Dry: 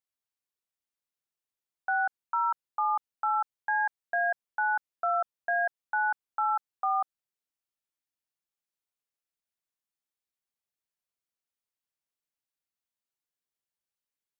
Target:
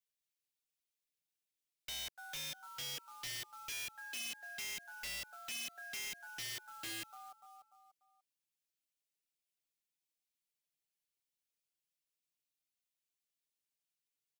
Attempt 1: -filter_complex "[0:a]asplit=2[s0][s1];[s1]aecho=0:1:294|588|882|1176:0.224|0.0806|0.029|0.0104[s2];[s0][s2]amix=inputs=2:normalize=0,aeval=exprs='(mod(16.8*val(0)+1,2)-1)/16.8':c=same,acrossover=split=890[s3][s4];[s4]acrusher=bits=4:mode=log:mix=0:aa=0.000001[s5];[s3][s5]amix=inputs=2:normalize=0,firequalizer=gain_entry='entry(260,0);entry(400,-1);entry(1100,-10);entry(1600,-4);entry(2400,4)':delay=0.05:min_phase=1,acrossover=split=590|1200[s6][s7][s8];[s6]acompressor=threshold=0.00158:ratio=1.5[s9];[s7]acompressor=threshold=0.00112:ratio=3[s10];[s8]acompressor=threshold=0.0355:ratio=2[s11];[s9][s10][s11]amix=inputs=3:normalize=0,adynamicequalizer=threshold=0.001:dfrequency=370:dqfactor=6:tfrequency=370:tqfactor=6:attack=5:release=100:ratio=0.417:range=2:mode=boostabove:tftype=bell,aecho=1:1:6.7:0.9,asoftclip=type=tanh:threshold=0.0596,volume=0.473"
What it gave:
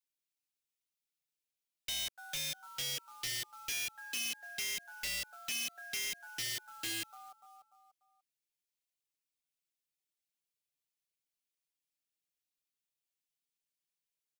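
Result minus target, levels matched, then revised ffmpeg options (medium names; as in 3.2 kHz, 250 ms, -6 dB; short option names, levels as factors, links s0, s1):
saturation: distortion -7 dB
-filter_complex "[0:a]asplit=2[s0][s1];[s1]aecho=0:1:294|588|882|1176:0.224|0.0806|0.029|0.0104[s2];[s0][s2]amix=inputs=2:normalize=0,aeval=exprs='(mod(16.8*val(0)+1,2)-1)/16.8':c=same,acrossover=split=890[s3][s4];[s4]acrusher=bits=4:mode=log:mix=0:aa=0.000001[s5];[s3][s5]amix=inputs=2:normalize=0,firequalizer=gain_entry='entry(260,0);entry(400,-1);entry(1100,-10);entry(1600,-4);entry(2400,4)':delay=0.05:min_phase=1,acrossover=split=590|1200[s6][s7][s8];[s6]acompressor=threshold=0.00158:ratio=1.5[s9];[s7]acompressor=threshold=0.00112:ratio=3[s10];[s8]acompressor=threshold=0.0355:ratio=2[s11];[s9][s10][s11]amix=inputs=3:normalize=0,adynamicequalizer=threshold=0.001:dfrequency=370:dqfactor=6:tfrequency=370:tqfactor=6:attack=5:release=100:ratio=0.417:range=2:mode=boostabove:tftype=bell,aecho=1:1:6.7:0.9,asoftclip=type=tanh:threshold=0.02,volume=0.473"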